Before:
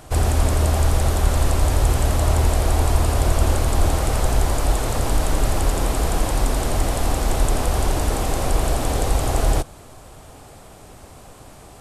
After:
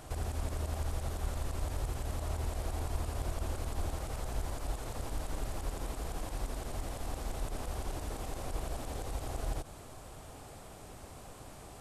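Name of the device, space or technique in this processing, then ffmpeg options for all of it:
de-esser from a sidechain: -filter_complex "[0:a]asplit=2[a][b];[b]highpass=5.1k,apad=whole_len=520704[c];[a][c]sidechaincompress=threshold=-44dB:ratio=10:attack=4.6:release=57,volume=-6.5dB"

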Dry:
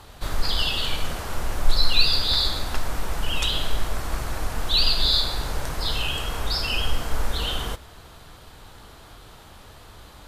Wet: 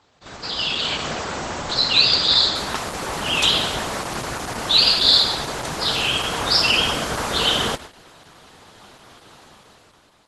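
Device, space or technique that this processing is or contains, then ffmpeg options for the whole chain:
video call: -af "highpass=150,dynaudnorm=f=190:g=9:m=13dB,agate=range=-9dB:threshold=-33dB:ratio=16:detection=peak,volume=-1dB" -ar 48000 -c:a libopus -b:a 12k

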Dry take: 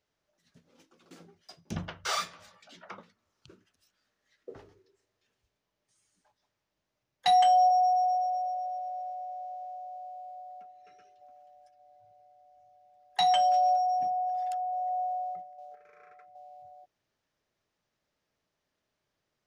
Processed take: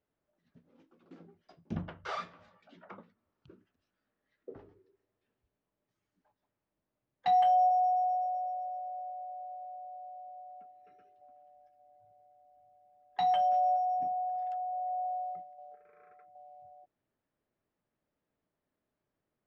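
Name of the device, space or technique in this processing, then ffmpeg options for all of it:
phone in a pocket: -filter_complex "[0:a]asettb=1/sr,asplit=3[a][b][c];[a]atrim=end=15.054[d];[b]atrim=start=15.05:end=15.55,asetpts=PTS-STARTPTS,afade=t=in:d=0.004:c=qsin,afade=t=out:st=0.496:d=0.004:c=qsin,highshelf=f=2.6k:g=10[e];[c]atrim=start=15.546[f];[d][e]acrossfade=d=0.004:c1=hsin:c2=qsin[g];[g][f]acrossfade=d=0.004:c1=qsin:c2=hsin,lowpass=3.8k,equalizer=f=260:t=o:w=1:g=4.5,highshelf=f=2.2k:g=-12,volume=-2.5dB"

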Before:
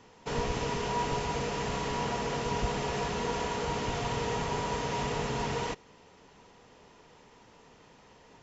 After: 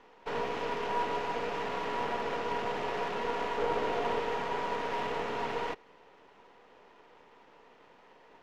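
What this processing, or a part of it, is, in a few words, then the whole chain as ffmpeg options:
crystal radio: -filter_complex "[0:a]asettb=1/sr,asplit=3[a][b][c];[a]atrim=end=3.584[d];[b]atrim=start=3.58:end=4.2,asetpts=PTS-STARTPTS,afade=t=in:d=0.004:c=qsin,afade=t=out:st=0.616:d=0.004:c=qsin,equalizer=f=450:t=o:w=1.5:g=5.5[e];[c]atrim=start=4.196[f];[d][e]acrossfade=d=0.004:c1=hsin:c2=qsin[g];[g][f]acrossfade=d=0.004:c1=qsin:c2=hsin,highpass=330,lowpass=2.7k,aeval=exprs='if(lt(val(0),0),0.447*val(0),val(0))':c=same,volume=3dB"

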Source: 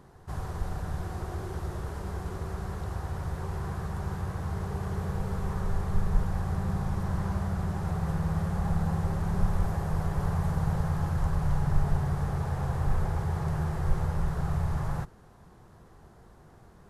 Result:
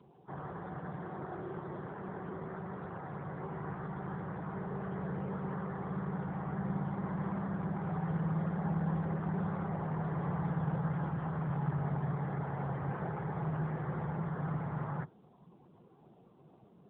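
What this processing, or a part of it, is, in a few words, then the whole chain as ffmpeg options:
mobile call with aggressive noise cancelling: -af "highpass=f=140:w=0.5412,highpass=f=140:w=1.3066,afftdn=nr=18:nf=-54,volume=-1dB" -ar 8000 -c:a libopencore_amrnb -b:a 7950

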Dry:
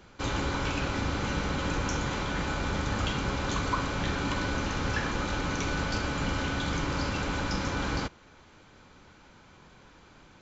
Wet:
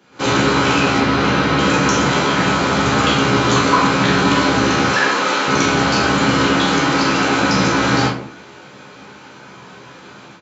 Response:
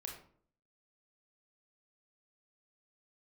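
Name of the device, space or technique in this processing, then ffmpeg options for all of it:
far laptop microphone: -filter_complex "[0:a]asettb=1/sr,asplit=3[a][b][c];[a]atrim=end=0.984[d];[b]atrim=start=0.98:end=1.59,asetpts=PTS-STARTPTS,afade=t=in:d=0.004:c=qsin,afade=t=out:st=0.606:d=0.004:c=qsin,lowpass=5k[e];[c]atrim=start=1.586[f];[d][e]acrossfade=d=0.004:c1=hsin:c2=qsin[g];[g][f]acrossfade=d=0.004:c1=qsin:c2=hsin,asettb=1/sr,asplit=3[h][i][j];[h]atrim=end=4.854[k];[i]atrim=start=4.85:end=5.48,asetpts=PTS-STARTPTS,afade=t=in:d=0.004:c=qsin,afade=t=out:st=0.626:d=0.004:c=qsin,highpass=380[l];[j]atrim=start=5.476[m];[k][l]acrossfade=d=0.004:c1=hsin:c2=qsin[n];[n][m]acrossfade=d=0.004:c1=qsin:c2=hsin,asettb=1/sr,asplit=3[o][p][q];[o]atrim=end=6.474[r];[p]atrim=start=6.47:end=7.39,asetpts=PTS-STARTPTS,afade=t=in:d=0.004:c=qsin,afade=t=out:st=0.916:d=0.004:c=qsin,equalizer=f=93:w=1.2:g=-9[s];[q]atrim=start=7.386[t];[r][s]acrossfade=d=0.004:c1=hsin:c2=qsin[u];[u][t]acrossfade=d=0.004:c1=qsin:c2=hsin[v];[1:a]atrim=start_sample=2205[w];[v][w]afir=irnorm=-1:irlink=0,highpass=f=130:w=0.5412,highpass=f=130:w=1.3066,dynaudnorm=f=110:g=3:m=14dB,asplit=2[x][y];[y]adelay=15,volume=-5dB[z];[x][z]amix=inputs=2:normalize=0,volume=4.5dB"

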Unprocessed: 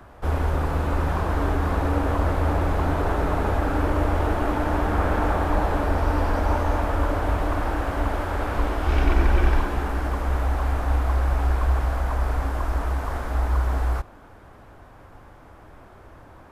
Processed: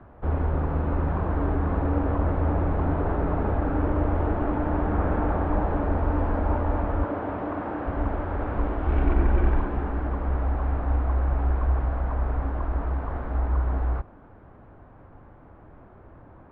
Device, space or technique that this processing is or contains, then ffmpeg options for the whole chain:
phone in a pocket: -filter_complex "[0:a]lowpass=3.5k,lowpass=5k,aemphasis=mode=reproduction:type=50fm,equalizer=f=180:t=o:w=2:g=4.5,highshelf=f=2.4k:g=-10,asettb=1/sr,asplit=3[a][b][c];[a]atrim=end=7.044[d];[b]atrim=start=7.04:end=7.86,asetpts=PTS-STARTPTS,afade=t=in:d=0.004:c=qsin,afade=t=out:st=0.816:d=0.004:c=qsin,highpass=150[e];[c]atrim=start=7.856[f];[d][e]acrossfade=d=0.004:c1=hsin:c2=qsin[g];[g][f]acrossfade=d=0.004:c1=qsin:c2=hsin,volume=-3.5dB"

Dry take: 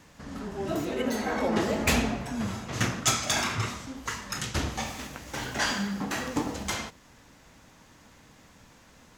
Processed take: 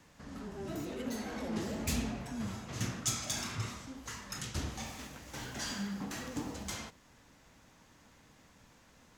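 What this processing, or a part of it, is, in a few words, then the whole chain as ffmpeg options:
one-band saturation: -filter_complex "[0:a]acrossover=split=300|4000[a][b][c];[b]asoftclip=type=tanh:threshold=-36dB[d];[a][d][c]amix=inputs=3:normalize=0,volume=-6.5dB"

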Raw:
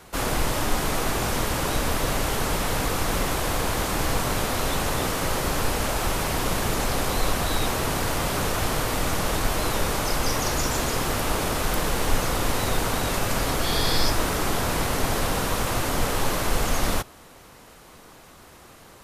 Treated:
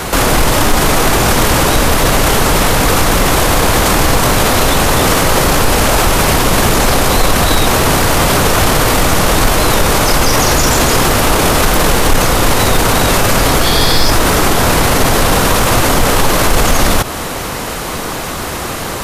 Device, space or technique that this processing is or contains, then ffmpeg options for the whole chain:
loud club master: -af "acompressor=threshold=-28dB:ratio=1.5,asoftclip=type=hard:threshold=-17.5dB,alimiter=level_in=29dB:limit=-1dB:release=50:level=0:latency=1,volume=-1dB"

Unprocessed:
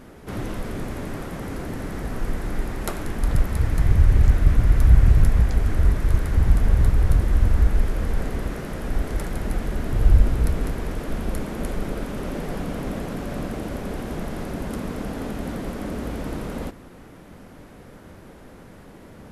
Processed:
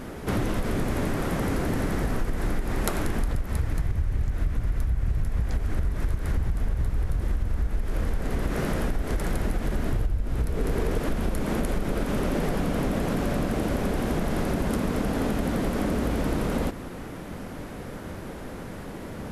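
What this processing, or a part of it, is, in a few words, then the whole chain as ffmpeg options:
serial compression, peaks first: -filter_complex "[0:a]acompressor=threshold=-24dB:ratio=6,acompressor=threshold=-30dB:ratio=3,asettb=1/sr,asplit=3[a][b][c];[a]atrim=end=10.494[d];[b]atrim=start=10.49:end=10.98,asetpts=PTS-STARTPTS,afade=t=in:d=0.004:c=qsin,afade=t=out:st=0.486:d=0.004:c=qsin,equalizer=f=430:t=o:w=0.43:g=7.5[e];[c]atrim=start=10.976[f];[d][e]acrossfade=d=0.004:c1=hsin:c2=qsin[g];[g][f]acrossfade=d=0.004:c1=qsin:c2=hsin,volume=7.5dB"

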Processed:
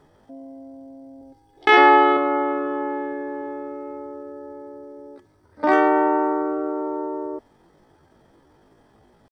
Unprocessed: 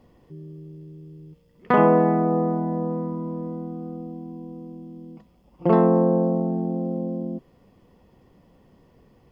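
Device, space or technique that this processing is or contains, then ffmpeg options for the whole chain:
chipmunk voice: -filter_complex "[0:a]asetrate=76340,aresample=44100,atempo=0.577676,asettb=1/sr,asplit=3[a][b][c];[a]atrim=end=1.214[d];[b]atrim=start=1.21:end=2.17,asetpts=PTS-STARTPTS,afade=t=in:d=0.004:c=qsin,afade=t=out:st=0.956:d=0.004:c=qsin,aecho=1:1:2.4:0.77,atrim=end_sample=42336[e];[c]atrim=start=2.166[f];[d][e]acrossfade=d=0.004:c1=hsin:c2=qsin[g];[g][f]acrossfade=d=0.004:c1=qsin:c2=hsin"

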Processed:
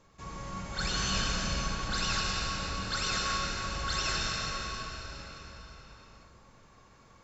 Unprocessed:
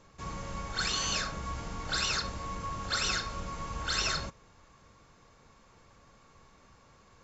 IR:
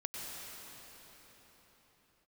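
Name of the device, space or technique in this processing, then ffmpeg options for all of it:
cathedral: -filter_complex "[0:a]asettb=1/sr,asplit=3[a][b][c];[a]atrim=end=0.784[d];[b]atrim=start=0.78:end=1.39,asetpts=PTS-STARTPTS,afade=t=in:d=0.004:c=qsin,afade=t=out:st=0.606:d=0.004:c=qsin,lowshelf=f=220:g=9[e];[c]atrim=start=1.386[f];[d][e]acrossfade=d=0.004:c1=hsin:c2=qsin[g];[g][f]acrossfade=d=0.004:c1=qsin:c2=hsin[h];[1:a]atrim=start_sample=2205[i];[h][i]afir=irnorm=-1:irlink=0"

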